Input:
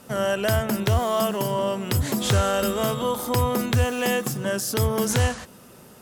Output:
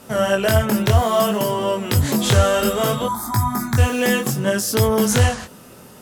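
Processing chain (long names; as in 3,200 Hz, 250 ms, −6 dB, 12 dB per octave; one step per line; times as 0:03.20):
0:03.06–0:03.78: phaser with its sweep stopped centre 1,200 Hz, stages 4
chorus effect 0.62 Hz, delay 18 ms, depth 5.9 ms
level +8 dB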